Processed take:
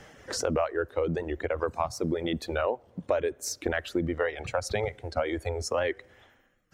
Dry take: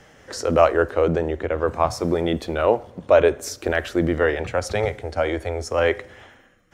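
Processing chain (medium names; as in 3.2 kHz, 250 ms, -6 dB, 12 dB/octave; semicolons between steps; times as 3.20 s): reverb removal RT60 1.9 s; compression 5:1, threshold -25 dBFS, peak gain reduction 14 dB; warped record 78 rpm, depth 100 cents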